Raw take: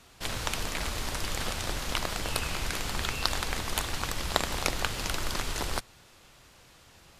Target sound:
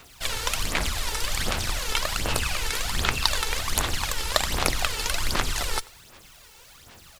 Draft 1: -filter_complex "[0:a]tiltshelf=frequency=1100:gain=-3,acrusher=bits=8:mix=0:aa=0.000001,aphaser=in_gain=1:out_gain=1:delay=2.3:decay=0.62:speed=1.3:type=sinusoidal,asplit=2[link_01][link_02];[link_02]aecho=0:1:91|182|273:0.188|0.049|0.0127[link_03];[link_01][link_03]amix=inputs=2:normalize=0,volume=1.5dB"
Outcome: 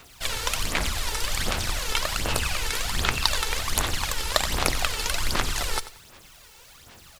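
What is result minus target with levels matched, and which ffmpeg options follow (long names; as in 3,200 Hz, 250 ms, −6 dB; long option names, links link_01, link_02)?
echo-to-direct +8 dB
-filter_complex "[0:a]tiltshelf=frequency=1100:gain=-3,acrusher=bits=8:mix=0:aa=0.000001,aphaser=in_gain=1:out_gain=1:delay=2.3:decay=0.62:speed=1.3:type=sinusoidal,asplit=2[link_01][link_02];[link_02]aecho=0:1:91|182:0.075|0.0195[link_03];[link_01][link_03]amix=inputs=2:normalize=0,volume=1.5dB"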